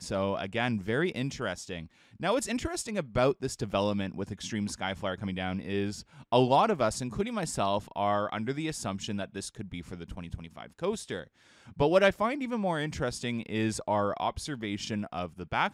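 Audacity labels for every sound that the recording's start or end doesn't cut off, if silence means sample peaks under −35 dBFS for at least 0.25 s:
2.210000	6.010000	sound
6.320000	11.230000	sound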